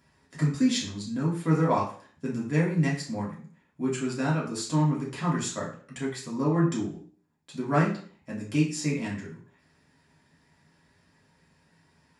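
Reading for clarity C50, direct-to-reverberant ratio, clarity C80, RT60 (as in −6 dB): 6.5 dB, −5.5 dB, 11.0 dB, 0.50 s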